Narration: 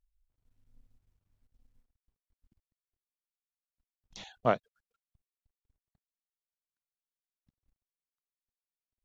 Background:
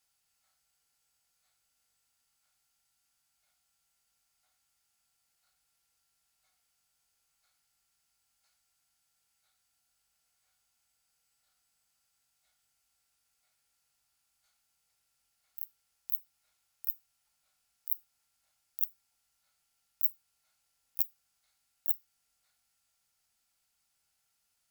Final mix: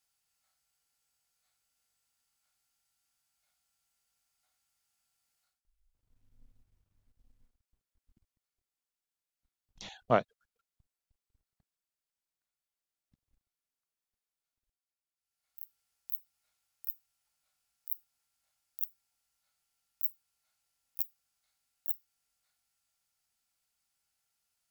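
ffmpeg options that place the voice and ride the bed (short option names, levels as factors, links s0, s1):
-filter_complex "[0:a]adelay=5650,volume=1.06[s0];[1:a]volume=5.31,afade=t=out:st=5.4:d=0.22:silence=0.11885,afade=t=in:st=15.15:d=0.61:silence=0.133352[s1];[s0][s1]amix=inputs=2:normalize=0"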